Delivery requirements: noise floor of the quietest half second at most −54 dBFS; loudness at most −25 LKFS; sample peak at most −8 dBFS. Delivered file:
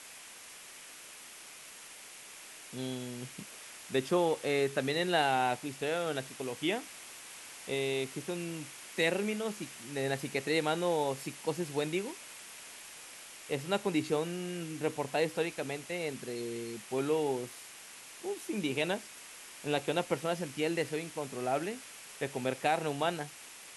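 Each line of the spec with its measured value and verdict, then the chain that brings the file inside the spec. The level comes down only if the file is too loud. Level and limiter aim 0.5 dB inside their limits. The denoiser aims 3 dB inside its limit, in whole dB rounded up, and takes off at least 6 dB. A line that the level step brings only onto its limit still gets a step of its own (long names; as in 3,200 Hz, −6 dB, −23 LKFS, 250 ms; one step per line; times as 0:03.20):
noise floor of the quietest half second −50 dBFS: out of spec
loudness −34.0 LKFS: in spec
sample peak −16.0 dBFS: in spec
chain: broadband denoise 7 dB, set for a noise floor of −50 dBFS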